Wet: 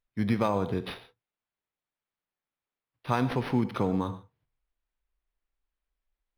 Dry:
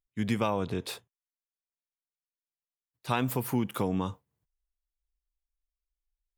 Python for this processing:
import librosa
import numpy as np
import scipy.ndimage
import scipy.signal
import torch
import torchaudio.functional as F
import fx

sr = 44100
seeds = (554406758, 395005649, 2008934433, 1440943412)

y = fx.notch(x, sr, hz=2800.0, q=5.6)
y = fx.rev_gated(y, sr, seeds[0], gate_ms=160, shape='flat', drr_db=11.5)
y = np.interp(np.arange(len(y)), np.arange(len(y))[::6], y[::6])
y = y * 10.0 ** (2.0 / 20.0)